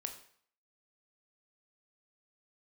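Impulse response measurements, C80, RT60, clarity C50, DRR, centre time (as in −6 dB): 13.0 dB, 0.55 s, 10.0 dB, 5.0 dB, 14 ms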